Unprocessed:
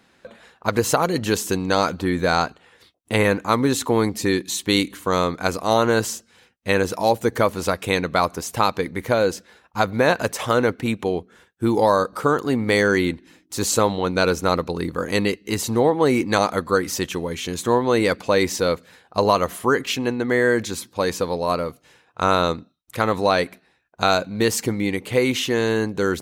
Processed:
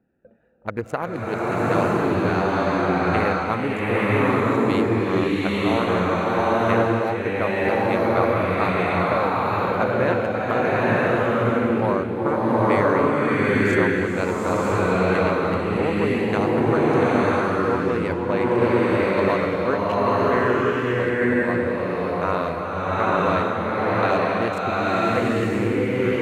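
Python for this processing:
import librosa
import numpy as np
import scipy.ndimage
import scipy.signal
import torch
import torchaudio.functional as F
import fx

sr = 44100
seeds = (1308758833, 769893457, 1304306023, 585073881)

y = fx.wiener(x, sr, points=41)
y = fx.high_shelf_res(y, sr, hz=3100.0, db=-9.0, q=1.5)
y = fx.rev_bloom(y, sr, seeds[0], attack_ms=980, drr_db=-8.5)
y = y * librosa.db_to_amplitude(-7.0)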